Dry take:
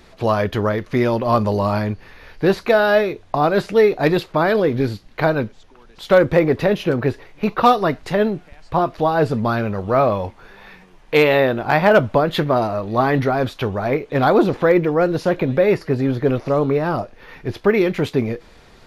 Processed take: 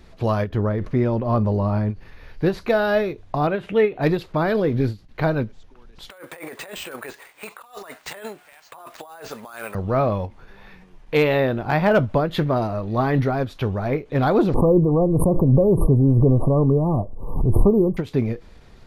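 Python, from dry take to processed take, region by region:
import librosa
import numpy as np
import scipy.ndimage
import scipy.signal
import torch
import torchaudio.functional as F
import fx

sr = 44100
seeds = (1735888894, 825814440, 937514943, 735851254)

y = fx.chain(x, sr, fx.high_shelf(hz=2200.0, db=-12.0),
    fx.sustainer(db_per_s=140.0), at=(0.49, 1.9))
y = fx.chain(y, sr, fx.highpass(hz=74.0, slope=6),
    fx.high_shelf_res(hz=3800.0, db=-8.0, q=3.0), at=(3.47, 4.02))
y = fx.chain(y, sr, fx.highpass(hz=910.0, slope=12),
    fx.over_compress(threshold_db=-33.0, ratio=-1.0),
    fx.resample_bad(factor=4, down='none', up='hold'), at=(6.1, 9.75))
y = fx.chain(y, sr, fx.brickwall_bandstop(low_hz=1200.0, high_hz=8400.0),
    fx.low_shelf(hz=170.0, db=9.0),
    fx.pre_swell(db_per_s=56.0), at=(14.54, 17.97))
y = fx.low_shelf(y, sr, hz=220.0, db=10.0)
y = fx.end_taper(y, sr, db_per_s=260.0)
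y = y * librosa.db_to_amplitude(-6.0)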